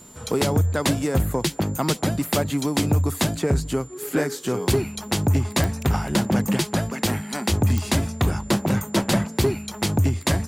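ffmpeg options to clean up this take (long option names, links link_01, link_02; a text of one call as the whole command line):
ffmpeg -i in.wav -af "adeclick=threshold=4,bandreject=frequency=7200:width=30" out.wav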